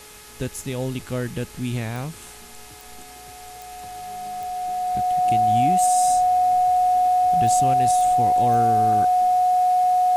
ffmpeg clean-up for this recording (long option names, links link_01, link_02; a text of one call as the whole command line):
ffmpeg -i in.wav -af "adeclick=threshold=4,bandreject=frequency=422.7:width_type=h:width=4,bandreject=frequency=845.4:width_type=h:width=4,bandreject=frequency=1268.1:width_type=h:width=4,bandreject=frequency=1690.8:width_type=h:width=4,bandreject=frequency=2113.5:width_type=h:width=4,bandreject=frequency=2536.2:width_type=h:width=4,bandreject=frequency=730:width=30,afwtdn=0.0071" out.wav